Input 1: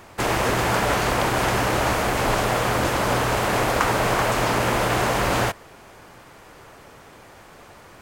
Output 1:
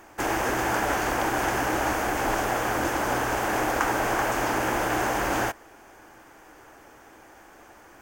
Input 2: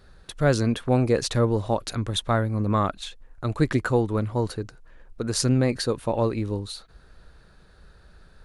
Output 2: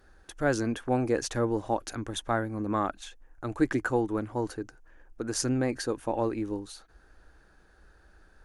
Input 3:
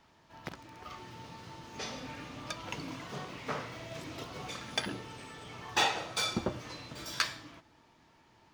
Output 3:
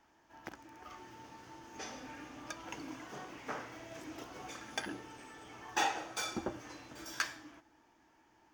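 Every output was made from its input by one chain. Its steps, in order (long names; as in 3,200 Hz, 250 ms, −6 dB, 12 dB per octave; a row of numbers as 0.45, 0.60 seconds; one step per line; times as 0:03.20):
thirty-one-band graphic EQ 100 Hz −8 dB, 160 Hz −10 dB, 315 Hz +8 dB, 800 Hz +6 dB, 1,600 Hz +6 dB, 4,000 Hz −7 dB, 6,300 Hz +5 dB, 16,000 Hz +9 dB
level −6.5 dB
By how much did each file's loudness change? −4.0, −5.5, −5.0 LU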